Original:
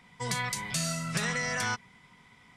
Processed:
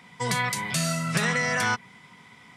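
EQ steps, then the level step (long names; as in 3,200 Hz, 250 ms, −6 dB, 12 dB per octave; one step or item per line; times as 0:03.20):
high-pass filter 110 Hz 12 dB per octave
dynamic equaliser 6,200 Hz, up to −5 dB, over −45 dBFS, Q 0.81
+7.0 dB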